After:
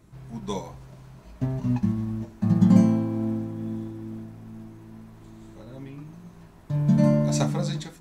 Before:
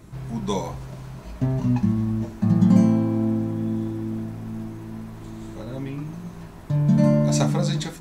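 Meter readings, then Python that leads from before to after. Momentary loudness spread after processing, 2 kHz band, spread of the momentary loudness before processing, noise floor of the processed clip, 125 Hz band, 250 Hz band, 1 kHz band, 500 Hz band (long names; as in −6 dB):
24 LU, can't be measured, 19 LU, −49 dBFS, −3.0 dB, −2.5 dB, −4.0 dB, −3.5 dB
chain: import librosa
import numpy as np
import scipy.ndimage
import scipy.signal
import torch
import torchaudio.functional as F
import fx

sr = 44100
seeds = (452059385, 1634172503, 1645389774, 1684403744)

y = fx.upward_expand(x, sr, threshold_db=-31.0, expansion=1.5)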